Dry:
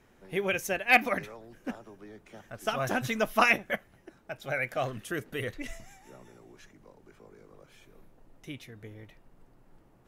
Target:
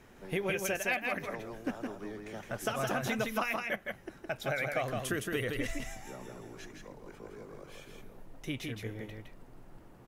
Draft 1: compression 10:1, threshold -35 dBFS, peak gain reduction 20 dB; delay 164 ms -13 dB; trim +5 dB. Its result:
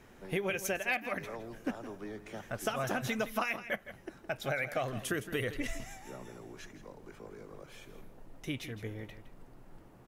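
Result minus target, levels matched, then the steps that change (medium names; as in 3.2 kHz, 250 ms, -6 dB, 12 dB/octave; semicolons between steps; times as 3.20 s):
echo-to-direct -9 dB
change: delay 164 ms -4 dB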